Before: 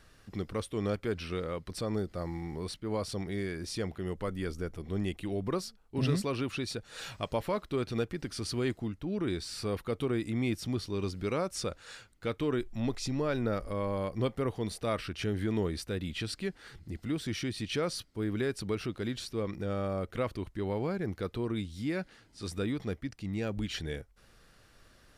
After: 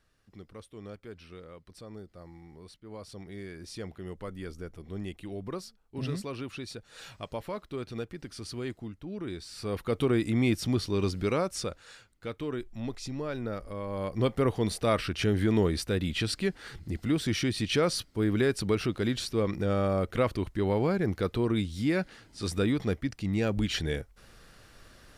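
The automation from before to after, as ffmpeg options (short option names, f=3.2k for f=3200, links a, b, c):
-af "volume=15dB,afade=t=in:st=2.8:d=1.07:silence=0.421697,afade=t=in:st=9.54:d=0.47:silence=0.316228,afade=t=out:st=11.14:d=0.79:silence=0.354813,afade=t=in:st=13.87:d=0.54:silence=0.334965"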